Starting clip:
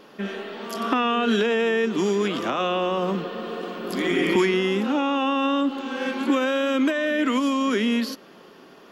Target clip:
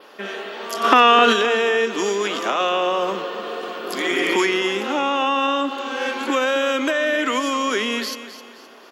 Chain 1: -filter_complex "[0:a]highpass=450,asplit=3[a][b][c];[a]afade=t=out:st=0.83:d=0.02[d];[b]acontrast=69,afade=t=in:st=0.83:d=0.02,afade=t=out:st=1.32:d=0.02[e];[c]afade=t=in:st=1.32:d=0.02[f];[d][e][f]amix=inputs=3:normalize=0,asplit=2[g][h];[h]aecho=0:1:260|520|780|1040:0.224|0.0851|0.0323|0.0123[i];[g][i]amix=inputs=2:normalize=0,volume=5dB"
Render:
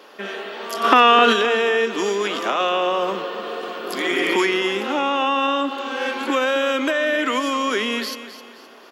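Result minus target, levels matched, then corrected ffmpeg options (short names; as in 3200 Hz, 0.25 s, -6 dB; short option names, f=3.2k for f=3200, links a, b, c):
8000 Hz band -3.0 dB
-filter_complex "[0:a]highpass=450,adynamicequalizer=threshold=0.002:dfrequency=6600:dqfactor=2.6:tfrequency=6600:tqfactor=2.6:attack=5:release=100:ratio=0.375:range=2:mode=boostabove:tftype=bell,asplit=3[a][b][c];[a]afade=t=out:st=0.83:d=0.02[d];[b]acontrast=69,afade=t=in:st=0.83:d=0.02,afade=t=out:st=1.32:d=0.02[e];[c]afade=t=in:st=1.32:d=0.02[f];[d][e][f]amix=inputs=3:normalize=0,asplit=2[g][h];[h]aecho=0:1:260|520|780|1040:0.224|0.0851|0.0323|0.0123[i];[g][i]amix=inputs=2:normalize=0,volume=5dB"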